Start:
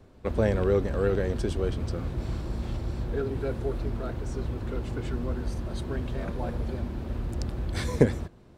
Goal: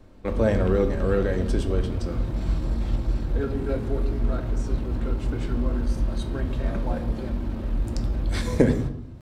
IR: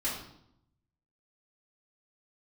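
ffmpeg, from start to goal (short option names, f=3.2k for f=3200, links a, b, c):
-filter_complex "[0:a]atempo=0.93,asplit=2[a][b];[1:a]atrim=start_sample=2205,lowshelf=f=170:g=5[c];[b][c]afir=irnorm=-1:irlink=0,volume=-9.5dB[d];[a][d]amix=inputs=2:normalize=0"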